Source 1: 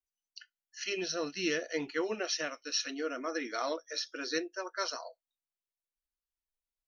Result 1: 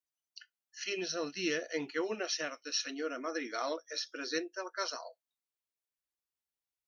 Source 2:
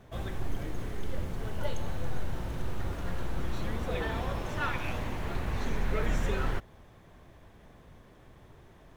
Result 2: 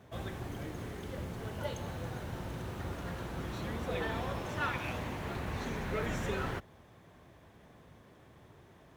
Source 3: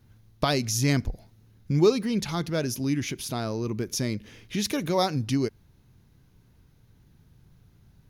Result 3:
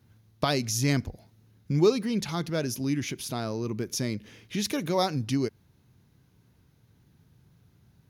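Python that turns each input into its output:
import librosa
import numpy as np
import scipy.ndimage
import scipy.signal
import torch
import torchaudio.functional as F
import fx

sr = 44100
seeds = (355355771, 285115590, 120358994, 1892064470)

y = scipy.signal.sosfilt(scipy.signal.butter(2, 79.0, 'highpass', fs=sr, output='sos'), x)
y = y * 10.0 ** (-1.5 / 20.0)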